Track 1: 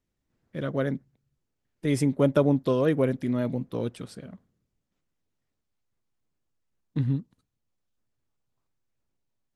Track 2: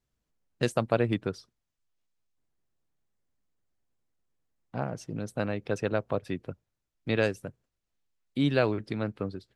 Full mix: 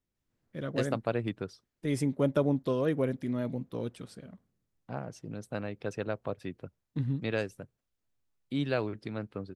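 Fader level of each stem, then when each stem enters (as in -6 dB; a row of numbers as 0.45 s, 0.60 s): -5.5 dB, -5.5 dB; 0.00 s, 0.15 s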